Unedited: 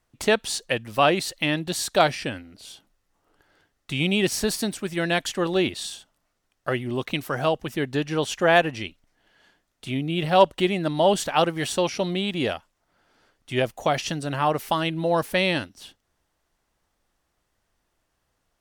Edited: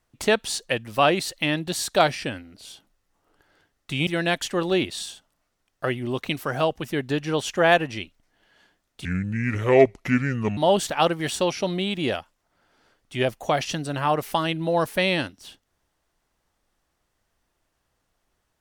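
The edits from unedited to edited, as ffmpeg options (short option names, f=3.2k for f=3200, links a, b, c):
-filter_complex "[0:a]asplit=4[a][b][c][d];[a]atrim=end=4.072[e];[b]atrim=start=4.908:end=9.894[f];[c]atrim=start=9.89:end=10.94,asetpts=PTS-STARTPTS,asetrate=30429,aresample=44100[g];[d]atrim=start=10.936[h];[e][f]acrossfade=d=0.004:c1=hsin:c2=hsin[i];[i][g]acrossfade=d=0.004:c1=hsin:c2=hsin[j];[j][h]acrossfade=d=0.004:c1=hsin:c2=hsin"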